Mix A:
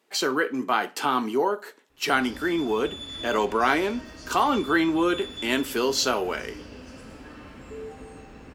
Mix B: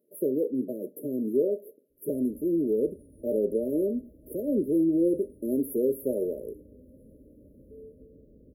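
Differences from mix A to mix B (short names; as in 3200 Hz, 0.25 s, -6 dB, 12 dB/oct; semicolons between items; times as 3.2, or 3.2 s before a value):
background -9.0 dB; master: add brick-wall FIR band-stop 630–10000 Hz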